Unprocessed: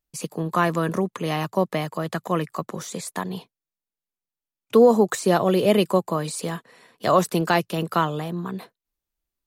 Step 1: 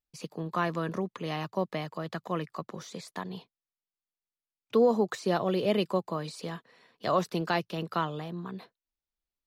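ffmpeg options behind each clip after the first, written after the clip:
-af "highshelf=f=6.4k:t=q:w=1.5:g=-8.5,volume=-8.5dB"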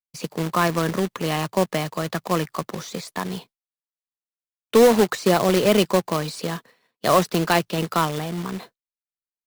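-af "acrusher=bits=2:mode=log:mix=0:aa=0.000001,agate=range=-33dB:threshold=-48dB:ratio=3:detection=peak,volume=9dB"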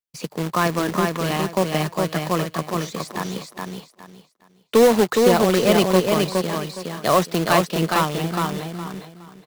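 -af "aecho=1:1:415|830|1245|1660:0.668|0.167|0.0418|0.0104"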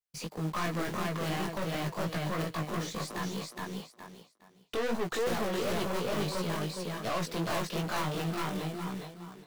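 -af "aeval=exprs='(tanh(22.4*val(0)+0.25)-tanh(0.25))/22.4':c=same,flanger=delay=16.5:depth=3.7:speed=2.8"

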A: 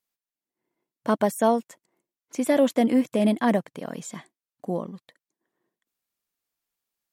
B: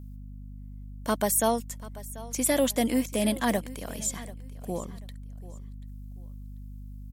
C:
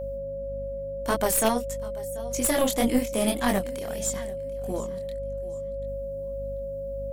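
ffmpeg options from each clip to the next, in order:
-af "crystalizer=i=5:c=0,aeval=exprs='val(0)+0.0178*(sin(2*PI*50*n/s)+sin(2*PI*2*50*n/s)/2+sin(2*PI*3*50*n/s)/3+sin(2*PI*4*50*n/s)/4+sin(2*PI*5*50*n/s)/5)':c=same,aecho=1:1:738|1476:0.126|0.0352,volume=-5.5dB"
-af "flanger=delay=20:depth=7.4:speed=1.7,aeval=exprs='0.211*(cos(1*acos(clip(val(0)/0.211,-1,1)))-cos(1*PI/2))+0.00944*(cos(4*acos(clip(val(0)/0.211,-1,1)))-cos(4*PI/2))+0.0531*(cos(6*acos(clip(val(0)/0.211,-1,1)))-cos(6*PI/2))+0.0266*(cos(8*acos(clip(val(0)/0.211,-1,1)))-cos(8*PI/2))':c=same,aeval=exprs='val(0)+0.0178*sin(2*PI*550*n/s)':c=same,volume=4dB"

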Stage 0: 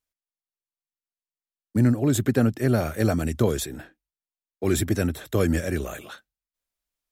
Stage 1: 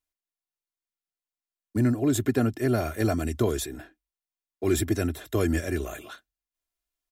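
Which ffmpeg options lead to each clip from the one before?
-af "aecho=1:1:2.9:0.49,volume=-3dB"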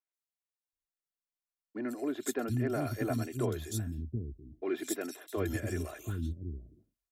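-filter_complex "[0:a]acrossover=split=260|3200[a][b][c];[c]adelay=130[d];[a]adelay=730[e];[e][b][d]amix=inputs=3:normalize=0,volume=-6.5dB"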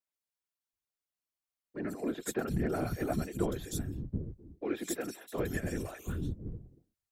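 -af "afftfilt=real='hypot(re,im)*cos(2*PI*random(0))':imag='hypot(re,im)*sin(2*PI*random(1))':win_size=512:overlap=0.75,volume=5.5dB"

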